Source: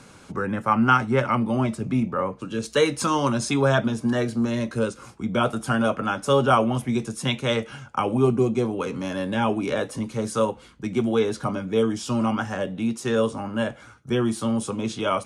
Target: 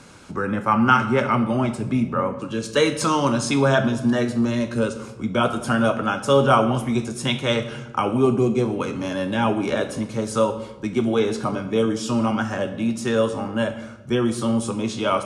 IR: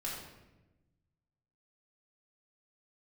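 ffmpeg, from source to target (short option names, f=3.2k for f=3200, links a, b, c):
-filter_complex "[0:a]asplit=2[a][b];[1:a]atrim=start_sample=2205,lowpass=7.6k,highshelf=f=5.9k:g=10[c];[b][c]afir=irnorm=-1:irlink=0,volume=-8dB[d];[a][d]amix=inputs=2:normalize=0"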